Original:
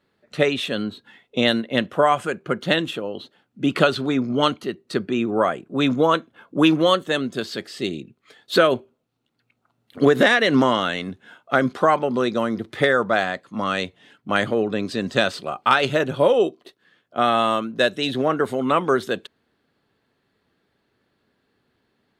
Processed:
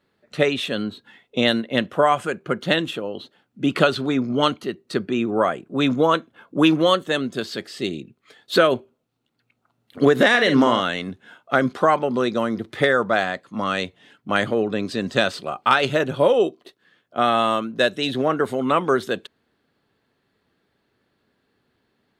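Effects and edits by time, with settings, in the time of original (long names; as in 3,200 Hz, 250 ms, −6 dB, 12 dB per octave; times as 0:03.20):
0:10.29–0:10.81: double-tracking delay 50 ms −8 dB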